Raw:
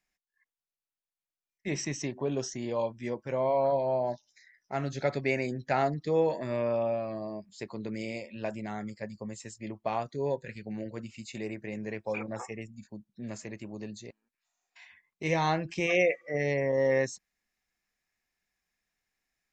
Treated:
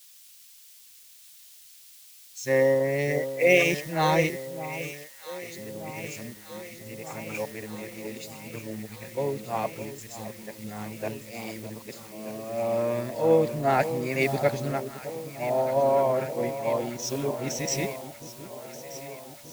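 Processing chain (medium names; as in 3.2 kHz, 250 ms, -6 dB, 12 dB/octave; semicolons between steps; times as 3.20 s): reverse the whole clip; in parallel at -12 dB: word length cut 6-bit, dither triangular; on the sum: echo whose repeats swap between lows and highs 616 ms, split 1 kHz, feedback 85%, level -8 dB; three bands expanded up and down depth 70%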